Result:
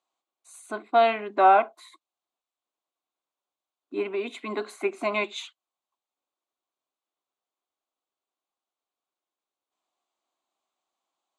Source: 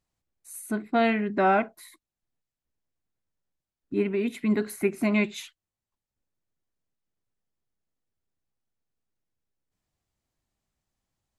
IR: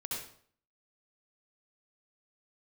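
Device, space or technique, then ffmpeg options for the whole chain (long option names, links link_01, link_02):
phone speaker on a table: -af "highpass=frequency=340:width=0.5412,highpass=frequency=340:width=1.3066,equalizer=frequency=450:width_type=q:width=4:gain=-5,equalizer=frequency=730:width_type=q:width=4:gain=5,equalizer=frequency=1100:width_type=q:width=4:gain=8,equalizer=frequency=1800:width_type=q:width=4:gain=-9,equalizer=frequency=3600:width_type=q:width=4:gain=4,equalizer=frequency=5300:width_type=q:width=4:gain=-9,lowpass=frequency=7700:width=0.5412,lowpass=frequency=7700:width=1.3066,volume=2dB"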